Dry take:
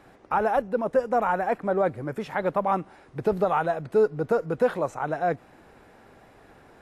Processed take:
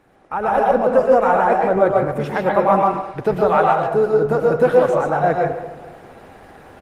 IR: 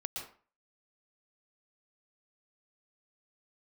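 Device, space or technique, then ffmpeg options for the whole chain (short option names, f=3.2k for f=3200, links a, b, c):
speakerphone in a meeting room: -filter_complex "[0:a]asettb=1/sr,asplit=3[a][b][c];[a]atrim=end=2.774[d];[b]atrim=start=2.77:end=3.66,asetpts=PTS-STARTPTS,afade=t=in:d=0.004:c=qsin,afade=t=out:st=0.886:d=0.004:c=qsin,equalizer=f=2.2k:w=0.31:g=5[e];[c]atrim=start=3.656[f];[d][e]acrossfade=d=0.004:c1=hsin:c2=qsin[g];[g][f]acrossfade=d=0.004:c1=qsin:c2=hsin,asplit=2[h][i];[i]adelay=217,lowpass=f=3.8k:p=1,volume=-15.5dB,asplit=2[j][k];[k]adelay=217,lowpass=f=3.8k:p=1,volume=0.46,asplit=2[l][m];[m]adelay=217,lowpass=f=3.8k:p=1,volume=0.46,asplit=2[n][o];[o]adelay=217,lowpass=f=3.8k:p=1,volume=0.46[p];[h][j][l][n][p]amix=inputs=5:normalize=0[q];[1:a]atrim=start_sample=2205[r];[q][r]afir=irnorm=-1:irlink=0,asplit=2[s][t];[t]adelay=140,highpass=300,lowpass=3.4k,asoftclip=type=hard:threshold=-15dB,volume=-11dB[u];[s][u]amix=inputs=2:normalize=0,dynaudnorm=f=150:g=7:m=11dB" -ar 48000 -c:a libopus -b:a 24k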